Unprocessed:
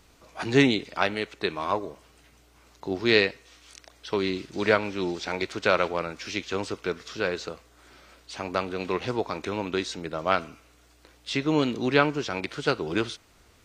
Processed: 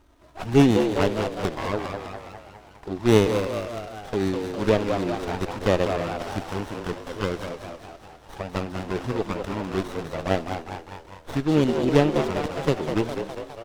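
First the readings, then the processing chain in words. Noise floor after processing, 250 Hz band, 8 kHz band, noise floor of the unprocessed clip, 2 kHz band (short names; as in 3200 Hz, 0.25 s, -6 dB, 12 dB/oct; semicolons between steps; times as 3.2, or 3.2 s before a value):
-49 dBFS, +4.5 dB, +2.0 dB, -59 dBFS, -5.0 dB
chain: envelope flanger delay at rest 3.3 ms, full sweep at -20 dBFS; frequency-shifting echo 0.203 s, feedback 59%, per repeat +79 Hz, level -5.5 dB; running maximum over 17 samples; gain +3.5 dB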